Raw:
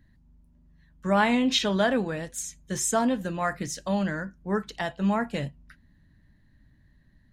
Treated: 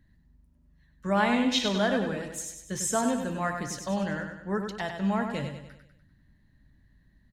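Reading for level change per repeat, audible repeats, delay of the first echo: -6.5 dB, 5, 98 ms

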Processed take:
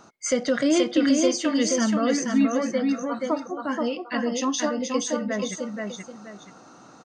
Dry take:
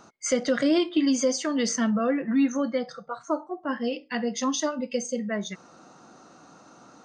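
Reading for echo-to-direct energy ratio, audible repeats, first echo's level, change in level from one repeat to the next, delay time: -3.0 dB, 2, -3.5 dB, -10.5 dB, 478 ms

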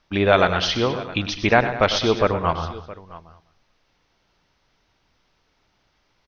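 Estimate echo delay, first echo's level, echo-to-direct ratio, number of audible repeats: 99 ms, -12.0 dB, -8.5 dB, 5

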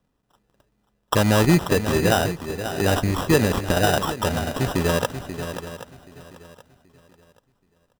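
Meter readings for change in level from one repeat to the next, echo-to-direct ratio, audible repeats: no regular repeats, -8.5 dB, 6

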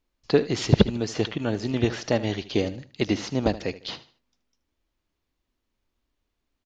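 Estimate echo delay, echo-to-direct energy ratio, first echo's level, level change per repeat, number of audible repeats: 76 ms, -15.5 dB, -16.0 dB, -10.0 dB, 2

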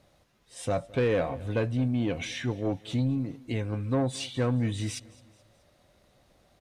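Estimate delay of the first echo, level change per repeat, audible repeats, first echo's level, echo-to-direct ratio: 214 ms, -6.5 dB, 3, -22.0 dB, -21.0 dB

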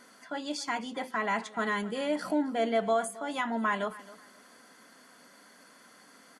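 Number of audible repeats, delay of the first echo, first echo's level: 2, 267 ms, -18.5 dB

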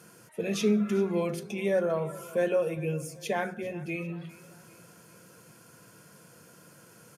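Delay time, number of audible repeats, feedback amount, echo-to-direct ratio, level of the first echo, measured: 397 ms, 3, 47%, -18.5 dB, -19.5 dB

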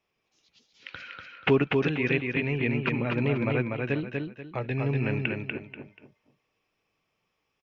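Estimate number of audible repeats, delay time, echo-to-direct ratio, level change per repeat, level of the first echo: 3, 242 ms, -3.0 dB, -10.5 dB, -3.5 dB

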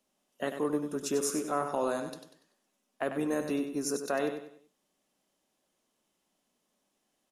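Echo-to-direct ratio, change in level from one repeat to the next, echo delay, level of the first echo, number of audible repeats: -7.5 dB, -9.0 dB, 96 ms, -8.0 dB, 4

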